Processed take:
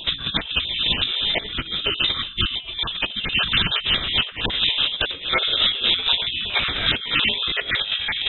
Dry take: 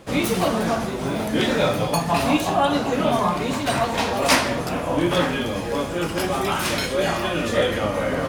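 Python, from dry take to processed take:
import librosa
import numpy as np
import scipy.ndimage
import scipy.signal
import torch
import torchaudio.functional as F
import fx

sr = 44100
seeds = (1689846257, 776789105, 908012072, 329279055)

y = fx.spec_dropout(x, sr, seeds[0], share_pct=21)
y = fx.dynamic_eq(y, sr, hz=3000.0, q=4.9, threshold_db=-44.0, ratio=4.0, max_db=-5)
y = fx.freq_invert(y, sr, carrier_hz=3800)
y = fx.low_shelf(y, sr, hz=260.0, db=11.0)
y = fx.over_compress(y, sr, threshold_db=-28.0, ratio=-0.5)
y = F.gain(torch.from_numpy(y), 5.5).numpy()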